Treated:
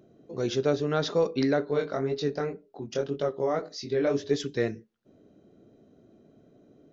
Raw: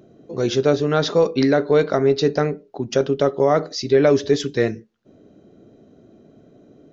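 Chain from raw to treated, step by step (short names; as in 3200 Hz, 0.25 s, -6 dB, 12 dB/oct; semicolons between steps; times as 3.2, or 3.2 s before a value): 1.65–4.31 chorus 1.9 Hz, delay 19.5 ms, depth 4.9 ms; gain -8 dB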